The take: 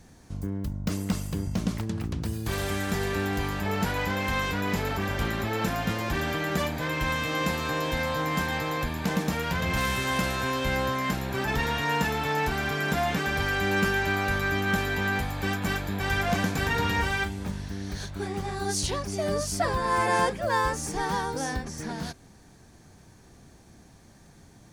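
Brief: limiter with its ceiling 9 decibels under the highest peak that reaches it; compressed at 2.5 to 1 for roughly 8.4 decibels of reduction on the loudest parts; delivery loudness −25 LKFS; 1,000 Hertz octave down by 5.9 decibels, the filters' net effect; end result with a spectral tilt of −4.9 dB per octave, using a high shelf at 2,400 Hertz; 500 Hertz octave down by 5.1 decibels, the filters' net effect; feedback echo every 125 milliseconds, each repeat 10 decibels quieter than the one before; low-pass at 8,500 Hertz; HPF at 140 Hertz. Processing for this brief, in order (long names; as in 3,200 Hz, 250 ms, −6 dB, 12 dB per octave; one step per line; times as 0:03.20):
high-pass filter 140 Hz
low-pass filter 8,500 Hz
parametric band 500 Hz −5 dB
parametric band 1,000 Hz −4.5 dB
high-shelf EQ 2,400 Hz −6.5 dB
downward compressor 2.5 to 1, threshold −38 dBFS
brickwall limiter −33 dBFS
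repeating echo 125 ms, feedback 32%, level −10 dB
level +16.5 dB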